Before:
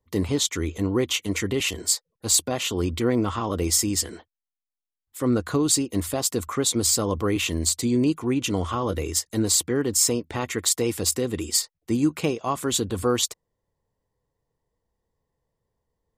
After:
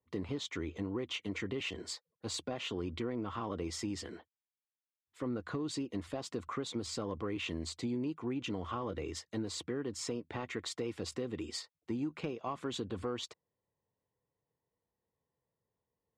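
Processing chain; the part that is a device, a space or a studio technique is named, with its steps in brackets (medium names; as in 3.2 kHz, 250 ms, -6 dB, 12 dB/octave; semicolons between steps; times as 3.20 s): AM radio (band-pass 100–3300 Hz; compression, threshold -25 dBFS, peak gain reduction 9 dB; saturation -16.5 dBFS, distortion -25 dB); trim -7.5 dB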